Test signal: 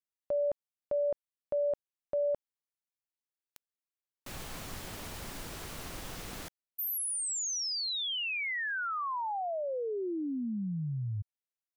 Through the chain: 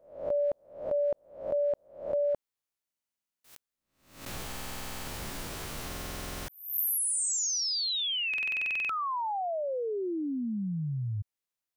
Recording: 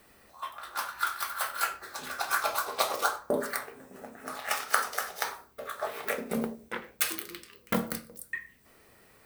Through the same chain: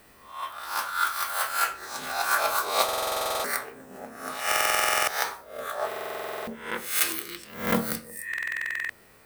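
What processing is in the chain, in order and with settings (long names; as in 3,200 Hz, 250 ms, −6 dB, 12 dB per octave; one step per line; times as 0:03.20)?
peak hold with a rise ahead of every peak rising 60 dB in 0.52 s
buffer that repeats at 0:02.84/0:04.47/0:05.87/0:08.29, samples 2,048, times 12
level +2 dB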